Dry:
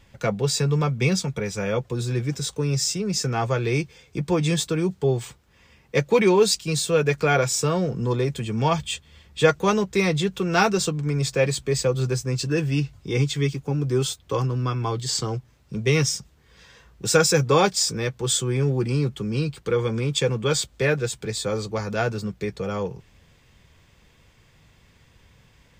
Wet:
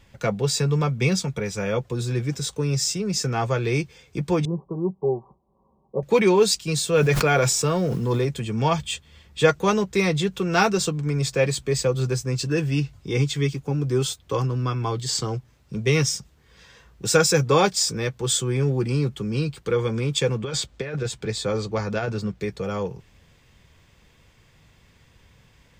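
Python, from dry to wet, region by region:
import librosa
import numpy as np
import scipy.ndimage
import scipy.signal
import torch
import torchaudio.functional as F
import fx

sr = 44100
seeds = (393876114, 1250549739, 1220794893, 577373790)

y = fx.chain(x, sr, fx.cheby_ripple(hz=1100.0, ripple_db=3),
    fx.low_shelf(hz=250.0, db=-8.5),
    fx.comb(ms=5.2, depth=0.63), at=(4.45, 6.03))
y = fx.highpass(y, sr, hz=56.0, slope=12, at=(6.93, 8.24), fade=0.02)
y = fx.dmg_noise_colour(y, sr, seeds[0], colour='pink', level_db=-53.0, at=(6.93, 8.24), fade=0.02)
y = fx.sustainer(y, sr, db_per_s=32.0, at=(6.93, 8.24), fade=0.02)
y = fx.chain(y, sr, fx.peak_eq(hz=13000.0, db=-11.0, octaves=1.1),
    fx.over_compress(threshold_db=-24.0, ratio=-0.5), at=(20.38, 22.4))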